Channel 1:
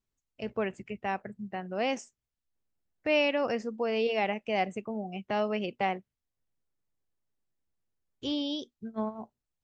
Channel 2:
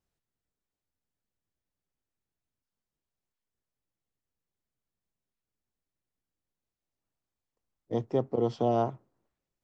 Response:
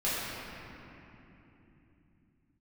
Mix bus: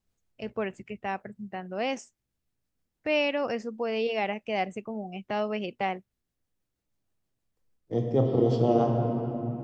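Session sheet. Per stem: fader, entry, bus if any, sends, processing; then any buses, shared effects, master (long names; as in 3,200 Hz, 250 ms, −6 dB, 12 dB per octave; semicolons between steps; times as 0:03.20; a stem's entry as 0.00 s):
0.0 dB, 0.00 s, no send, automatic ducking −22 dB, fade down 0.20 s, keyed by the second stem
0.0 dB, 0.00 s, send −7.5 dB, bass and treble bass +3 dB, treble +1 dB; rotating-speaker cabinet horn 6.3 Hz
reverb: on, RT60 3.2 s, pre-delay 3 ms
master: no processing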